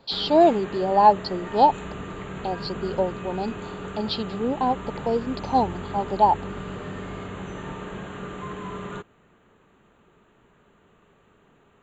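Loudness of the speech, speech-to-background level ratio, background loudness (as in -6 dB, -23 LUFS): -23.0 LUFS, 12.5 dB, -35.5 LUFS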